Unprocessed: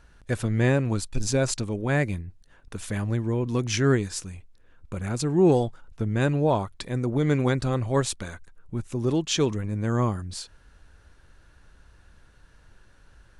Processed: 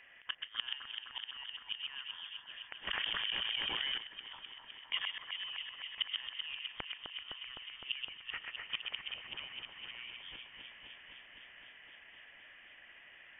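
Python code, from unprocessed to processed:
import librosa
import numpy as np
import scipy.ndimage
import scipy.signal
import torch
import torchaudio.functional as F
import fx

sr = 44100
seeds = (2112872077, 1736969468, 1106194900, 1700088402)

y = fx.spec_flatten(x, sr, power=0.6, at=(8.32, 10.01), fade=0.02)
y = scipy.signal.sosfilt(scipy.signal.butter(2, 490.0, 'highpass', fs=sr, output='sos'), y)
y = fx.gate_flip(y, sr, shuts_db=-26.0, range_db=-27)
y = fx.air_absorb(y, sr, metres=340.0)
y = fx.echo_alternate(y, sr, ms=128, hz=1700.0, feedback_pct=89, wet_db=-4.0)
y = fx.freq_invert(y, sr, carrier_hz=3400)
y = fx.env_flatten(y, sr, amount_pct=100, at=(2.87, 3.98))
y = y * librosa.db_to_amplitude(6.5)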